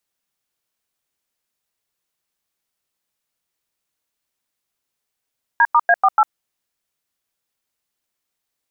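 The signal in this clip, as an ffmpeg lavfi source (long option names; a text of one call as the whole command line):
ffmpeg -f lavfi -i "aevalsrc='0.251*clip(min(mod(t,0.145),0.051-mod(t,0.145))/0.002,0,1)*(eq(floor(t/0.145),0)*(sin(2*PI*941*mod(t,0.145))+sin(2*PI*1633*mod(t,0.145)))+eq(floor(t/0.145),1)*(sin(2*PI*941*mod(t,0.145))+sin(2*PI*1209*mod(t,0.145)))+eq(floor(t/0.145),2)*(sin(2*PI*697*mod(t,0.145))+sin(2*PI*1633*mod(t,0.145)))+eq(floor(t/0.145),3)*(sin(2*PI*770*mod(t,0.145))+sin(2*PI*1209*mod(t,0.145)))+eq(floor(t/0.145),4)*(sin(2*PI*852*mod(t,0.145))+sin(2*PI*1336*mod(t,0.145))))':duration=0.725:sample_rate=44100" out.wav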